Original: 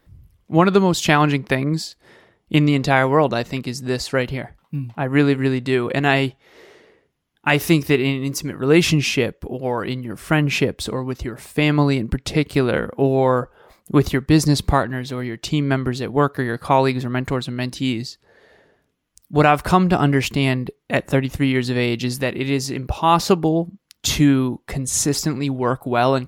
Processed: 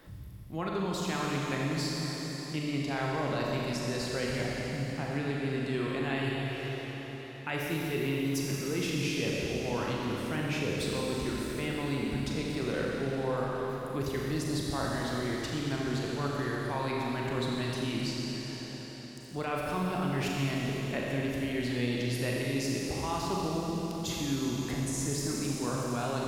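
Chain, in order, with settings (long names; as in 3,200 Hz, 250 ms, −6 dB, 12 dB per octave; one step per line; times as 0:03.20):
reversed playback
downward compressor 6 to 1, threshold −28 dBFS, peak gain reduction 18.5 dB
reversed playback
four-comb reverb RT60 3.4 s, combs from 29 ms, DRR −3.5 dB
multiband upward and downward compressor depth 40%
level −5.5 dB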